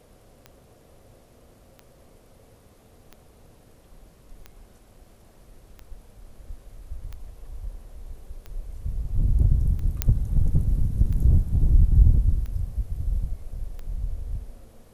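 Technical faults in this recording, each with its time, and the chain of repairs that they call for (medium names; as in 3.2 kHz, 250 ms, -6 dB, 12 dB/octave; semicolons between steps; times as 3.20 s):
tick 45 rpm -25 dBFS
10.02 s: pop -5 dBFS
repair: de-click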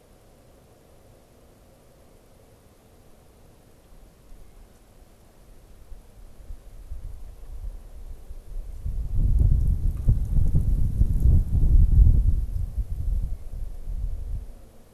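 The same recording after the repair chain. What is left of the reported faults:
nothing left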